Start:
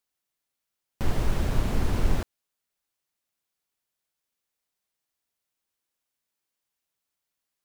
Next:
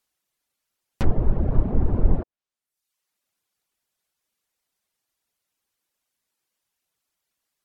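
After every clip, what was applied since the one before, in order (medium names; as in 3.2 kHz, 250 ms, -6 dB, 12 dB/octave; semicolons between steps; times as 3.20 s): reverb removal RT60 0.74 s; low-pass that closes with the level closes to 680 Hz, closed at -22.5 dBFS; trim +6.5 dB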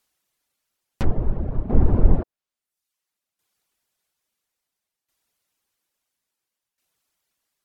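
tremolo saw down 0.59 Hz, depth 75%; trim +5 dB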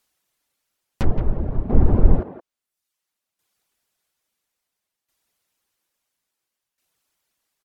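speakerphone echo 170 ms, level -9 dB; trim +1.5 dB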